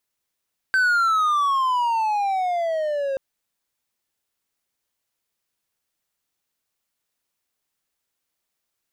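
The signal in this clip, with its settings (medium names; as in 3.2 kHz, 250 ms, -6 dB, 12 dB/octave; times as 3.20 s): gliding synth tone triangle, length 2.43 s, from 1.55 kHz, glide -18.5 st, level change -6.5 dB, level -13.5 dB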